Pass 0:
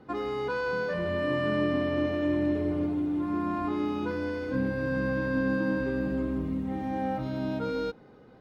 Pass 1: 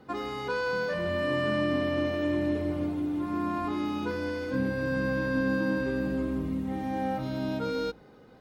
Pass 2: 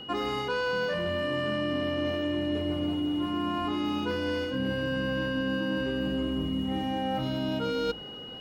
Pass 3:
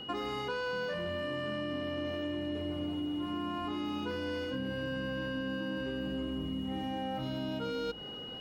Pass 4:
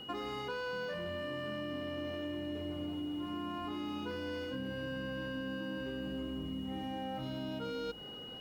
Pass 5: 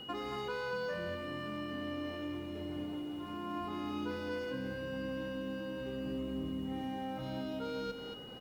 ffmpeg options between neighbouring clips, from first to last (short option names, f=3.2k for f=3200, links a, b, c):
-af "highshelf=f=4.2k:g=9,bandreject=f=60:t=h:w=6,bandreject=f=120:t=h:w=6,bandreject=f=180:t=h:w=6,bandreject=f=240:t=h:w=6,bandreject=f=300:t=h:w=6,bandreject=f=360:t=h:w=6,bandreject=f=420:t=h:w=6"
-af "areverse,acompressor=threshold=-35dB:ratio=6,areverse,aeval=exprs='val(0)+0.00355*sin(2*PI*2900*n/s)':c=same,volume=8dB"
-af "acompressor=threshold=-31dB:ratio=6,volume=-1.5dB"
-af "acrusher=bits=10:mix=0:aa=0.000001,volume=-3.5dB"
-af "aecho=1:1:225:0.422"